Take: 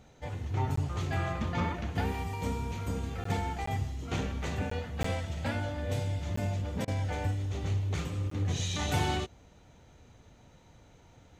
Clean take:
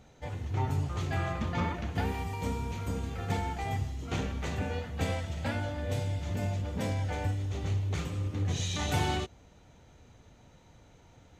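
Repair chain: interpolate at 0.76/3.24/3.66/4.70/5.03/6.36/8.30 s, 14 ms; interpolate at 6.85 s, 26 ms

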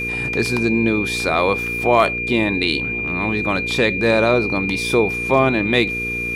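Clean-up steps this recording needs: clip repair -3.5 dBFS; de-click; de-hum 59 Hz, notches 8; band-stop 2.4 kHz, Q 30

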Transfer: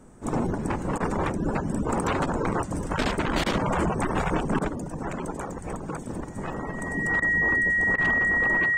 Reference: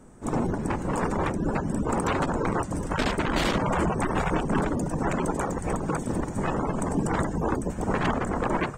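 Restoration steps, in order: band-stop 1.9 kHz, Q 30; interpolate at 6.53 s, 1.9 ms; interpolate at 0.98/3.44/4.59/7.20/7.96 s, 20 ms; gain correction +5.5 dB, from 4.68 s

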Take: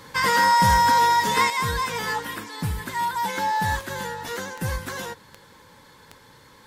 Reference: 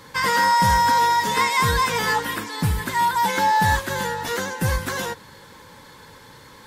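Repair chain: de-click; gain correction +5.5 dB, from 1.50 s

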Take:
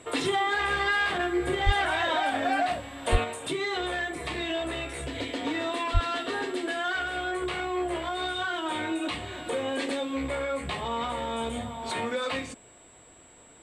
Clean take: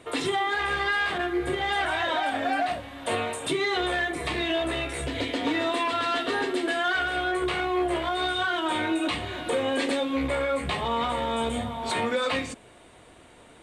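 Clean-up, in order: band-stop 7.7 kHz, Q 30; de-plosive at 1.65/3.11/5.93 s; gain correction +4 dB, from 3.24 s

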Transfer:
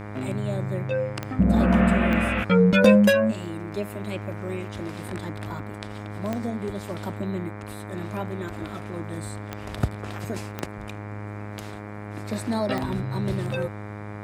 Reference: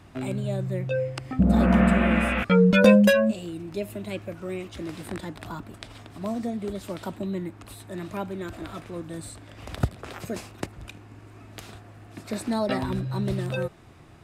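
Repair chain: de-click; de-hum 103.8 Hz, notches 23

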